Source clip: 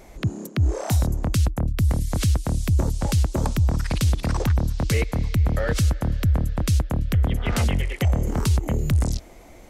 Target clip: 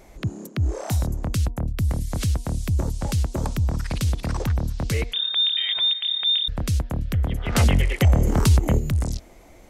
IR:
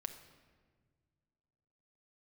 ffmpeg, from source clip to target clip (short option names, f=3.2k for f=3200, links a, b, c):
-filter_complex "[0:a]asettb=1/sr,asplit=3[a][b][c];[a]atrim=end=5.134[d];[b]atrim=start=5.13:end=6.48,asetpts=PTS-STARTPTS,afade=t=in:d=0.004:c=qsin,afade=t=out:st=1.346:d=0.004:c=qsin,lowpass=f=3.1k:t=q:w=0.5098,lowpass=f=3.1k:t=q:w=0.6013,lowpass=f=3.1k:t=q:w=0.9,lowpass=f=3.1k:t=q:w=2.563,afreqshift=-3700[e];[c]atrim=start=6.476[f];[d][e]acrossfade=d=0.004:c1=hsin:c2=qsin[g];[g][f]acrossfade=d=0.004:c1=qsin:c2=hsin,asettb=1/sr,asplit=3[h][i][j];[h]atrim=end=7.554[k];[i]atrim=start=7.55:end=8.79,asetpts=PTS-STARTPTS,afade=t=in:d=0.004:c=qsin,afade=t=out:st=1.236:d=0.004:c=qsin,acontrast=83[l];[j]atrim=start=8.786[m];[k][l]acrossfade=d=0.004:c1=hsin:c2=qsin[n];[n][m]acrossfade=d=0.004:c1=qsin:c2=hsin,bandreject=f=237.3:t=h:w=4,bandreject=f=474.6:t=h:w=4,bandreject=f=711.9:t=h:w=4,bandreject=f=949.2:t=h:w=4,volume=-2.5dB"